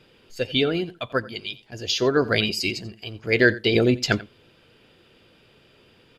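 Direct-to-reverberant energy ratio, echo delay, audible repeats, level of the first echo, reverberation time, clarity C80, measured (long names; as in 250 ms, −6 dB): no reverb audible, 88 ms, 1, −19.0 dB, no reverb audible, no reverb audible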